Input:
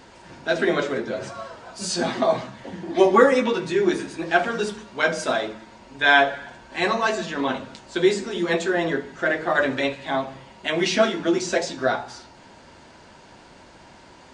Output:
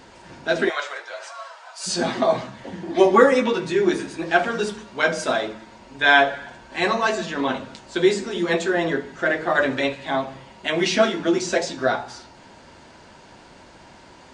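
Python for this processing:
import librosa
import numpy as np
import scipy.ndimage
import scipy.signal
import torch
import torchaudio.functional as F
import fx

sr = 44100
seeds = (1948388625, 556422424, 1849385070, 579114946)

y = fx.highpass(x, sr, hz=730.0, slope=24, at=(0.68, 1.86), fade=0.02)
y = F.gain(torch.from_numpy(y), 1.0).numpy()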